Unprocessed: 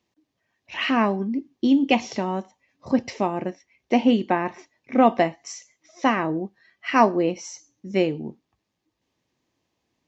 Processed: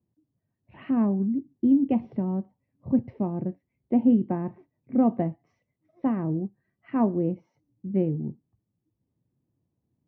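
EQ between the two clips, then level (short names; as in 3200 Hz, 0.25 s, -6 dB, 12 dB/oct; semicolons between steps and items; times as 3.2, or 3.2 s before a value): band-pass 120 Hz, Q 1.5; air absorption 310 m; +8.0 dB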